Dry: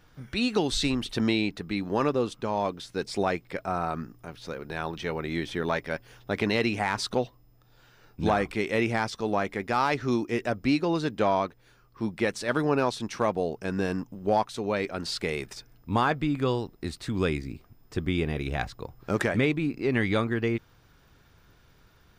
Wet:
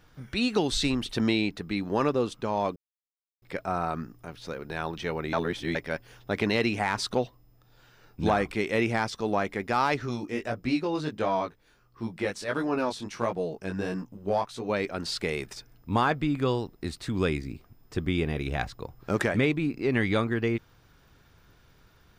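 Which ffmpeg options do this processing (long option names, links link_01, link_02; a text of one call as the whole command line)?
ffmpeg -i in.wav -filter_complex "[0:a]asplit=3[link_01][link_02][link_03];[link_01]afade=type=out:start_time=10.05:duration=0.02[link_04];[link_02]flanger=delay=16.5:depth=4.2:speed=1.5,afade=type=in:start_time=10.05:duration=0.02,afade=type=out:start_time=14.68:duration=0.02[link_05];[link_03]afade=type=in:start_time=14.68:duration=0.02[link_06];[link_04][link_05][link_06]amix=inputs=3:normalize=0,asplit=5[link_07][link_08][link_09][link_10][link_11];[link_07]atrim=end=2.76,asetpts=PTS-STARTPTS,afade=type=out:start_time=2.756:duration=0.004:curve=hsin[link_12];[link_08]atrim=start=2.76:end=3.42,asetpts=PTS-STARTPTS,volume=0[link_13];[link_09]atrim=start=3.42:end=5.332,asetpts=PTS-STARTPTS,afade=type=in:duration=0.004:curve=hsin[link_14];[link_10]atrim=start=5.328:end=5.752,asetpts=PTS-STARTPTS,areverse[link_15];[link_11]atrim=start=5.748[link_16];[link_12][link_13][link_14]concat=n=3:v=0:a=1[link_17];[link_17][link_15]acrossfade=duration=0.004:curve1=hsin:curve2=hsin[link_18];[link_18][link_16]acrossfade=duration=0.004:curve1=hsin:curve2=hsin" out.wav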